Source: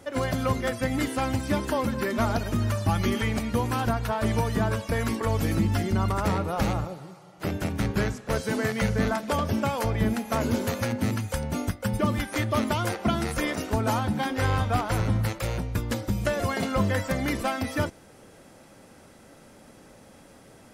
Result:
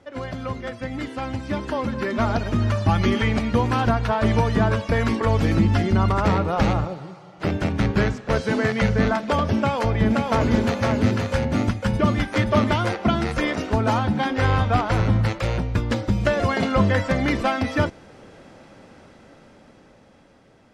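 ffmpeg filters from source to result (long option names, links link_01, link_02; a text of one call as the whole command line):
ffmpeg -i in.wav -filter_complex "[0:a]asettb=1/sr,asplit=3[link_01][link_02][link_03];[link_01]atrim=end=9.584[link_04];[link_02]atrim=start=9.58:end=12.88,asetpts=PTS-STARTPTS,afade=type=in:duration=0.004:curve=qsin,afade=type=out:start_time=3.296:duration=0.004:curve=qsin,aecho=1:1:523:0.668,atrim=end_sample=145530[link_05];[link_03]atrim=start=12.876[link_06];[link_04][link_05]acrossfade=duration=0.004:curve1=hsin:curve2=qsin[link_07];[link_07][link_06]acrossfade=duration=0.004:curve1=qsin:curve2=hsin,lowpass=4600,dynaudnorm=framelen=370:gausssize=11:maxgain=10.5dB,volume=-4dB" out.wav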